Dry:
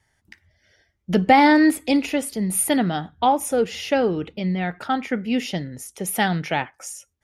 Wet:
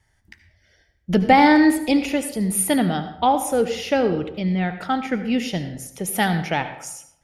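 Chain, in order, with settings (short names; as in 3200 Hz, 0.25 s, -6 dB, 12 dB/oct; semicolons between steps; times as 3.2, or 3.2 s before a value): low shelf 65 Hz +11 dB; reverb RT60 0.70 s, pre-delay 68 ms, DRR 10 dB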